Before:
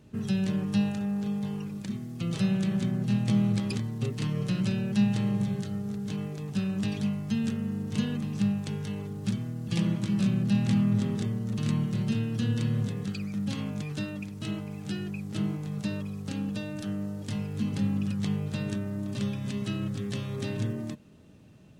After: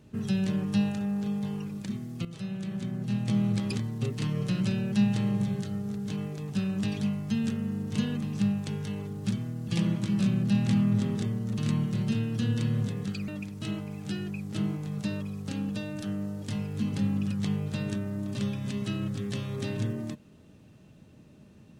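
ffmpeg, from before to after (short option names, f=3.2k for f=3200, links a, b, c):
-filter_complex "[0:a]asplit=3[a][b][c];[a]atrim=end=2.25,asetpts=PTS-STARTPTS,afade=t=out:st=2.246:d=0.004:c=hsin:silence=0.223872[d];[b]atrim=start=2.25:end=13.282,asetpts=PTS-STARTPTS,afade=t=in:d=1.48:silence=0.223872[e];[c]atrim=start=14.078[f];[d][e]concat=n=2:v=0:a=1[g];[g][f]acrossfade=d=0.004:c1=hsin:c2=hsin"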